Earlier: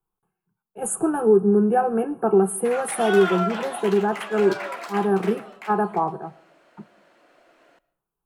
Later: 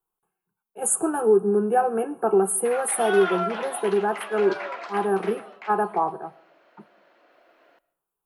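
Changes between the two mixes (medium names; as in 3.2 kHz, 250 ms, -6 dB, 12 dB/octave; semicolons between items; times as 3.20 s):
background: add distance through air 200 m; master: add tone controls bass -11 dB, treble +5 dB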